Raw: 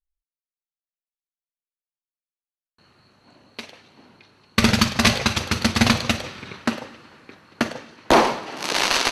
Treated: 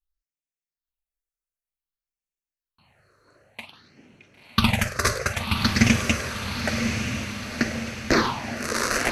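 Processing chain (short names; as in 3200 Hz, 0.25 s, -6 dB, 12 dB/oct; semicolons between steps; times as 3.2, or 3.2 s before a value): phaser stages 6, 0.54 Hz, lowest notch 210–1200 Hz; diffused feedback echo 1.022 s, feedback 52%, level -5.5 dB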